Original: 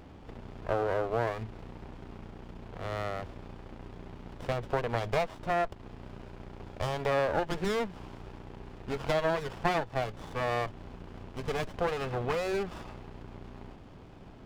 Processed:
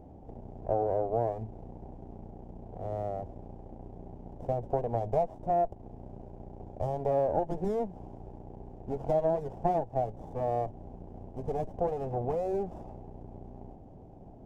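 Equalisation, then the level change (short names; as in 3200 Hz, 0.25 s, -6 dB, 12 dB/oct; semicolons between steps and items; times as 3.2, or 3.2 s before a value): EQ curve 480 Hz 0 dB, 770 Hz +4 dB, 1200 Hz -19 dB, 3000 Hz -23 dB, 4300 Hz -24 dB, 6100 Hz -15 dB; 0.0 dB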